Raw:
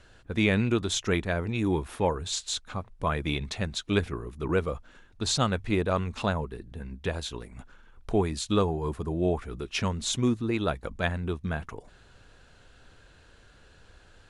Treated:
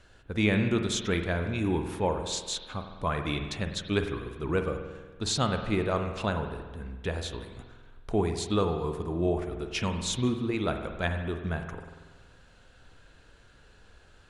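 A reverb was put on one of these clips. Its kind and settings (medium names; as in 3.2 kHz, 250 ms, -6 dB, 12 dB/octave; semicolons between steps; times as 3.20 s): spring tank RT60 1.4 s, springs 47 ms, chirp 55 ms, DRR 6 dB; trim -2 dB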